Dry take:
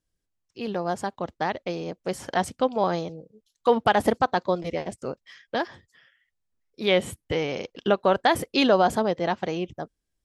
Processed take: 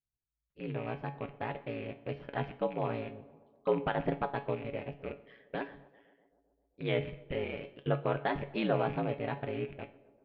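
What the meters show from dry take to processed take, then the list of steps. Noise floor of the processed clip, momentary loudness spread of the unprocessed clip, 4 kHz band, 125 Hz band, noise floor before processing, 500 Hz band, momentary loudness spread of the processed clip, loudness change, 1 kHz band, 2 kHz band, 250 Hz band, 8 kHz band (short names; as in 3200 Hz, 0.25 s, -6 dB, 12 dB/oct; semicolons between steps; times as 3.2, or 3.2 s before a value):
under -85 dBFS, 14 LU, -16.0 dB, -2.0 dB, -80 dBFS, -10.0 dB, 12 LU, -10.5 dB, -13.0 dB, -10.5 dB, -9.5 dB, under -35 dB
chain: rattling part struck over -41 dBFS, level -27 dBFS; Bessel low-pass 1900 Hz, order 8; bell 900 Hz -7.5 dB 1.7 oct; ring modulator 56 Hz; on a send: tape echo 0.13 s, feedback 80%, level -20.5 dB, low-pass 1400 Hz; on the sum: AGC gain up to 10.5 dB; bell 290 Hz -4 dB 0.77 oct; resonator 140 Hz, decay 0.23 s, harmonics all, mix 70%; Schroeder reverb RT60 0.73 s, DRR 16 dB; gain -5.5 dB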